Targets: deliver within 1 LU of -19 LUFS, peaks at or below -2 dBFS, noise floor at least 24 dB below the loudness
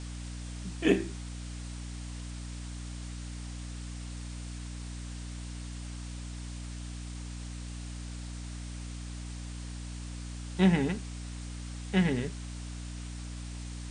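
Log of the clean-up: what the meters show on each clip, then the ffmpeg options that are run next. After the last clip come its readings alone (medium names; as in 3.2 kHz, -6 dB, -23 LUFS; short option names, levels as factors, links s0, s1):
hum 60 Hz; highest harmonic 300 Hz; hum level -38 dBFS; noise floor -40 dBFS; noise floor target -60 dBFS; loudness -36.0 LUFS; peak level -11.5 dBFS; loudness target -19.0 LUFS
-> -af "bandreject=f=60:t=h:w=4,bandreject=f=120:t=h:w=4,bandreject=f=180:t=h:w=4,bandreject=f=240:t=h:w=4,bandreject=f=300:t=h:w=4"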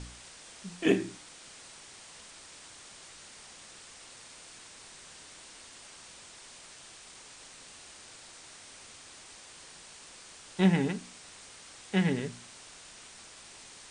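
hum not found; noise floor -51 dBFS; noise floor target -55 dBFS
-> -af "afftdn=nr=6:nf=-51"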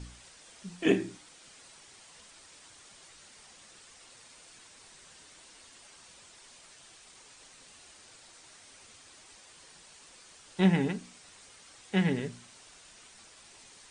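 noise floor -56 dBFS; loudness -30.0 LUFS; peak level -11.5 dBFS; loudness target -19.0 LUFS
-> -af "volume=3.55,alimiter=limit=0.794:level=0:latency=1"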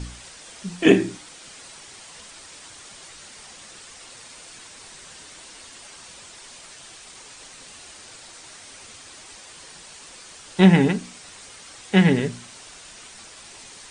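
loudness -19.5 LUFS; peak level -2.0 dBFS; noise floor -45 dBFS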